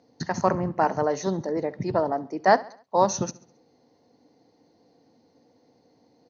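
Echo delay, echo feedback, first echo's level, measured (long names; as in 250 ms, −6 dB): 68 ms, 47%, −20.0 dB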